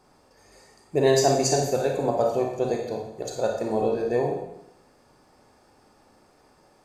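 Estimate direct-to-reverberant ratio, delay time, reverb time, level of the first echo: 1.0 dB, no echo audible, 0.80 s, no echo audible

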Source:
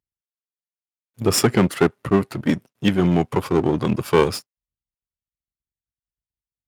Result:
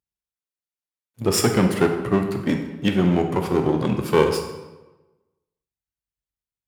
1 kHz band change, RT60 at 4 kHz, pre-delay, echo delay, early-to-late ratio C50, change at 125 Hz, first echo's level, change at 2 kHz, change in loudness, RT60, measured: −1.0 dB, 0.80 s, 15 ms, no echo audible, 6.5 dB, −1.0 dB, no echo audible, −1.0 dB, −1.0 dB, 1.1 s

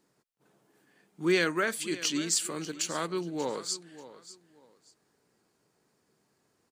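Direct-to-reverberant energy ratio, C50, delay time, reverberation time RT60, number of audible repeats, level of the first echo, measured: no reverb audible, no reverb audible, 587 ms, no reverb audible, 2, −16.0 dB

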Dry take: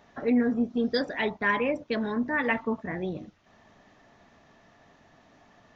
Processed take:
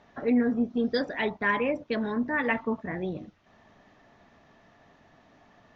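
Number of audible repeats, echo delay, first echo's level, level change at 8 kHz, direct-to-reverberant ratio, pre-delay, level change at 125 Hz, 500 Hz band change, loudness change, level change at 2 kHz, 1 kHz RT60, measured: no echo audible, no echo audible, no echo audible, can't be measured, no reverb audible, no reverb audible, 0.0 dB, 0.0 dB, −0.5 dB, −0.5 dB, no reverb audible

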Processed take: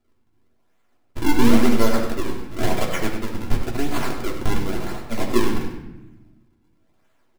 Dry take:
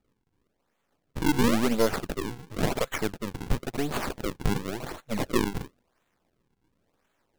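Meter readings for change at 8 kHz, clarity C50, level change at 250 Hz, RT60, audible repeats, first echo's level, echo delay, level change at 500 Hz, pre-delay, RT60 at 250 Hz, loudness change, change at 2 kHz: +3.5 dB, 5.0 dB, +6.5 dB, 0.95 s, 1, −9.0 dB, 97 ms, +4.5 dB, 3 ms, 1.6 s, +5.5 dB, +4.5 dB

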